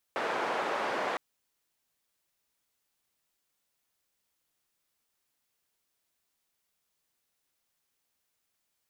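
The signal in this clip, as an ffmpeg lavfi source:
-f lavfi -i "anoisesrc=c=white:d=1.01:r=44100:seed=1,highpass=f=420,lowpass=f=1100,volume=-12.6dB"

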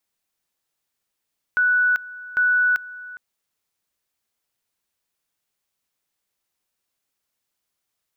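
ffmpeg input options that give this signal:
-f lavfi -i "aevalsrc='pow(10,(-15-19*gte(mod(t,0.8),0.39))/20)*sin(2*PI*1480*t)':d=1.6:s=44100"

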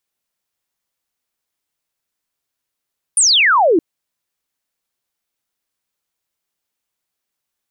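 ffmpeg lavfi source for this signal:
-f lavfi -i "aevalsrc='0.355*clip(t/0.002,0,1)*clip((0.62-t)/0.002,0,1)*sin(2*PI*9800*0.62/log(300/9800)*(exp(log(300/9800)*t/0.62)-1))':d=0.62:s=44100"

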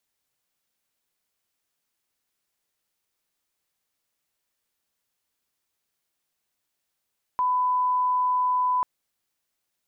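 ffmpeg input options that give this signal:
-f lavfi -i "sine=f=1000:d=1.44:r=44100,volume=-1.94dB"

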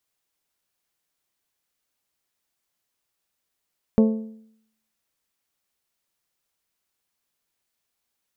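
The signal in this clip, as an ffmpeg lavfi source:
-f lavfi -i "aevalsrc='0.282*pow(10,-3*t/0.7)*sin(2*PI*220*t)+0.133*pow(10,-3*t/0.569)*sin(2*PI*440*t)+0.0631*pow(10,-3*t/0.538)*sin(2*PI*528*t)+0.0299*pow(10,-3*t/0.503)*sin(2*PI*660*t)+0.0141*pow(10,-3*t/0.462)*sin(2*PI*880*t)+0.00668*pow(10,-3*t/0.432)*sin(2*PI*1100*t)':d=1.55:s=44100"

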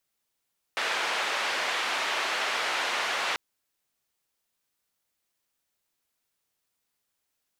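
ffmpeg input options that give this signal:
-f lavfi -i "anoisesrc=c=white:d=2.59:r=44100:seed=1,highpass=f=590,lowpass=f=2600,volume=-14.2dB"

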